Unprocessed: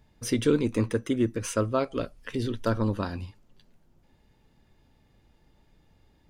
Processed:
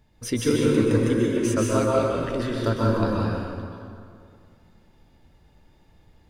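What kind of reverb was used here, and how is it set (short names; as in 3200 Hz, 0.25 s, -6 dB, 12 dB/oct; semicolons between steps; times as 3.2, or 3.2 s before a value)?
plate-style reverb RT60 2.3 s, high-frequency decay 0.6×, pre-delay 0.115 s, DRR -4 dB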